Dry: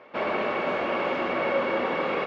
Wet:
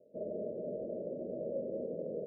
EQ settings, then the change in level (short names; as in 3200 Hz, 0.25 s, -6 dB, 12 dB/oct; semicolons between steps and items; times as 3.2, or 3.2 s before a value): rippled Chebyshev low-pass 650 Hz, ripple 6 dB; -6.5 dB